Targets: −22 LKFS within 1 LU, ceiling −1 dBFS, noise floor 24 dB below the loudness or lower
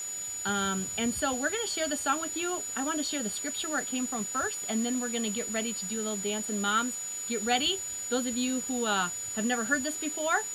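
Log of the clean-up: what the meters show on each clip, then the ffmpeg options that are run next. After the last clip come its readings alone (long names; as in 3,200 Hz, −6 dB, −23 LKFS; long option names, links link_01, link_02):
interfering tone 6,900 Hz; level of the tone −34 dBFS; background noise floor −37 dBFS; target noise floor −54 dBFS; integrated loudness −29.5 LKFS; sample peak −12.0 dBFS; target loudness −22.0 LKFS
→ -af "bandreject=frequency=6900:width=30"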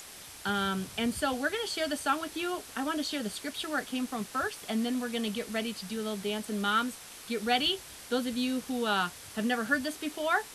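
interfering tone none found; background noise floor −48 dBFS; target noise floor −56 dBFS
→ -af "afftdn=noise_reduction=8:noise_floor=-48"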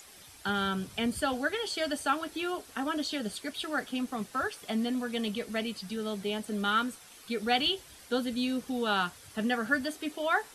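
background noise floor −53 dBFS; target noise floor −56 dBFS
→ -af "afftdn=noise_reduction=6:noise_floor=-53"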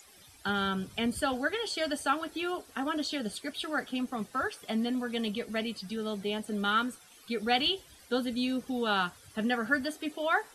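background noise floor −56 dBFS; integrated loudness −32.0 LKFS; sample peak −13.0 dBFS; target loudness −22.0 LKFS
→ -af "volume=10dB"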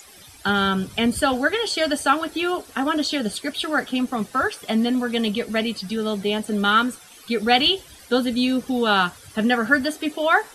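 integrated loudness −22.0 LKFS; sample peak −3.0 dBFS; background noise floor −46 dBFS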